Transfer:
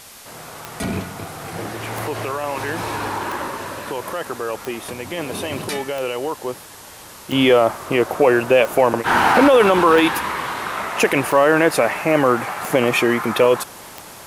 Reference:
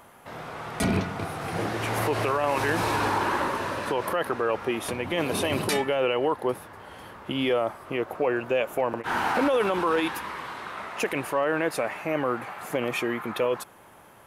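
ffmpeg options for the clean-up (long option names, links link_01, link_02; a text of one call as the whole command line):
ffmpeg -i in.wav -af "adeclick=threshold=4,afwtdn=0.01,asetnsamples=nb_out_samples=441:pad=0,asendcmd='7.32 volume volume -11dB',volume=0dB" out.wav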